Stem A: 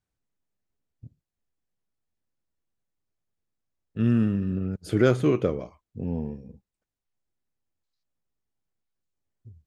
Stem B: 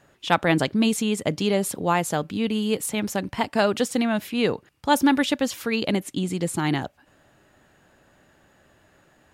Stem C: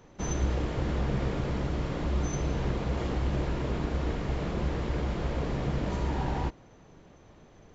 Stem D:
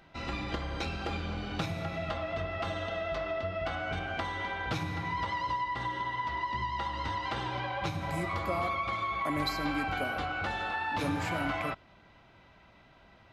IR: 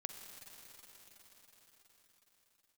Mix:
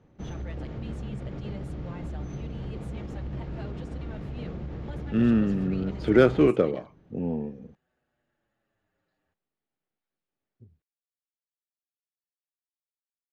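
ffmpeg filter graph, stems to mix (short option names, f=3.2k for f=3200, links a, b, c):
-filter_complex "[0:a]acrossover=split=160 5000:gain=0.2 1 0.0891[a][b][c];[a][b][c]amix=inputs=3:normalize=0,adelay=1150,volume=3dB[d];[1:a]alimiter=limit=-14dB:level=0:latency=1:release=328,asplit=2[e][f];[f]adelay=7.1,afreqshift=-0.56[g];[e][g]amix=inputs=2:normalize=1,volume=-17.5dB[h];[2:a]equalizer=f=130:w=0.45:g=9,alimiter=limit=-17.5dB:level=0:latency=1:release=73,volume=-10dB[i];[d][h][i]amix=inputs=3:normalize=0,bandreject=f=1k:w=13,adynamicsmooth=sensitivity=7:basefreq=5k"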